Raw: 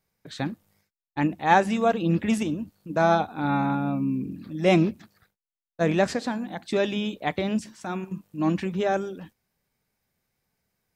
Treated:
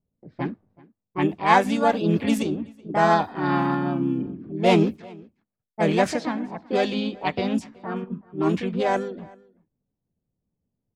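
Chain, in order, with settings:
low-pass that shuts in the quiet parts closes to 330 Hz, open at −19.5 dBFS
slap from a distant wall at 65 metres, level −24 dB
pitch-shifted copies added +4 semitones −3 dB

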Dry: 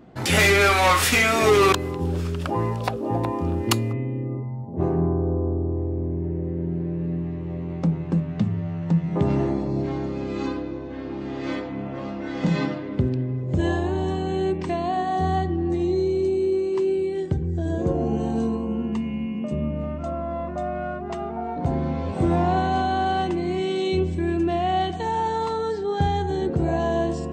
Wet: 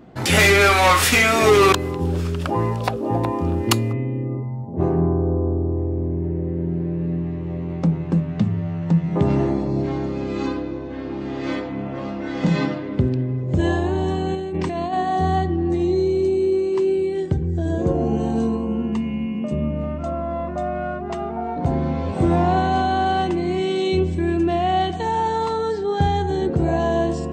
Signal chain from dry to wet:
0:14.34–0:14.93: compressor whose output falls as the input rises −28 dBFS, ratio −1
level +3 dB

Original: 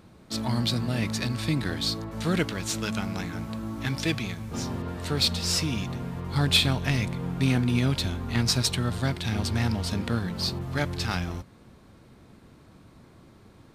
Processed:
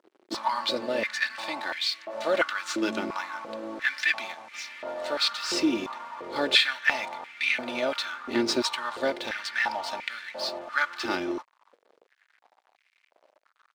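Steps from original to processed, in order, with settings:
Bessel low-pass filter 4,400 Hz, order 2
comb filter 3.4 ms, depth 64%
dead-zone distortion −47.5 dBFS
high-pass on a step sequencer 2.9 Hz 360–2,200 Hz

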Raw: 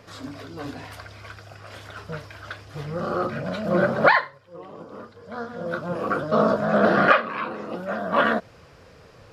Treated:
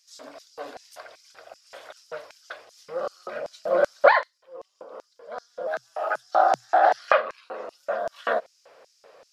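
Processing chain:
auto-filter high-pass square 2.6 Hz 570–5,800 Hz
0:05.67–0:06.99: frequency shifter +120 Hz
level −4 dB

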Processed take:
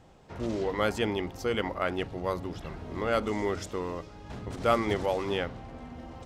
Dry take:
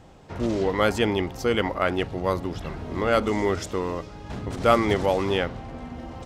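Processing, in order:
hum removal 47.8 Hz, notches 7
level −6 dB

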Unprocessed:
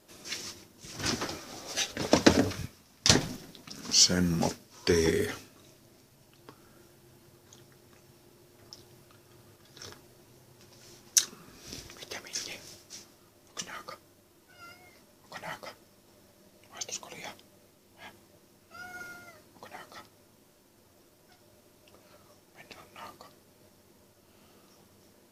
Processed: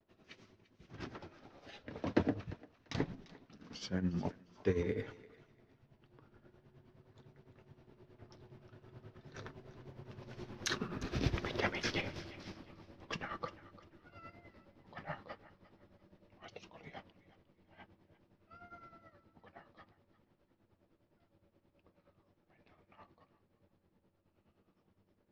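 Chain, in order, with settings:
source passing by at 0:11.34, 16 m/s, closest 10 metres
low-shelf EQ 210 Hz +5.5 dB
amplitude tremolo 9.6 Hz, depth 70%
high-frequency loss of the air 340 metres
feedback echo with a high-pass in the loop 350 ms, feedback 27%, high-pass 620 Hz, level −17 dB
pitch vibrato 0.45 Hz 33 cents
level +14.5 dB

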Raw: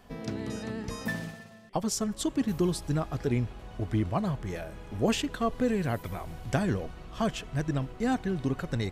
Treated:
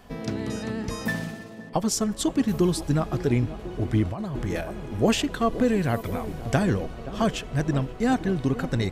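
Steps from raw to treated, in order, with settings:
feedback echo with a band-pass in the loop 524 ms, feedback 72%, band-pass 380 Hz, level −12 dB
0:04.11–0:04.61: compressor whose output falls as the input rises −34 dBFS, ratio −1
level +5 dB

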